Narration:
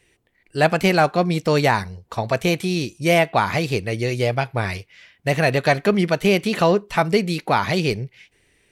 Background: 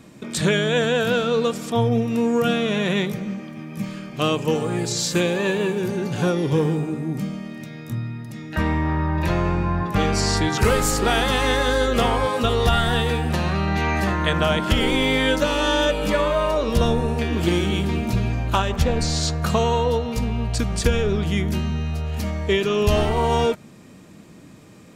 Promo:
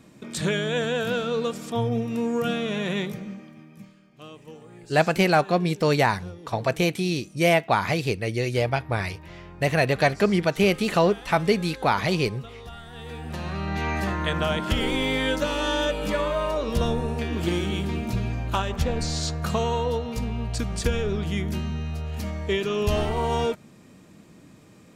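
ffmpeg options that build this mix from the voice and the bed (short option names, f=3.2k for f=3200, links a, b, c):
-filter_complex "[0:a]adelay=4350,volume=-3dB[a];[1:a]volume=12dB,afade=t=out:st=3.05:d=0.9:silence=0.141254,afade=t=in:st=12.92:d=0.96:silence=0.133352[b];[a][b]amix=inputs=2:normalize=0"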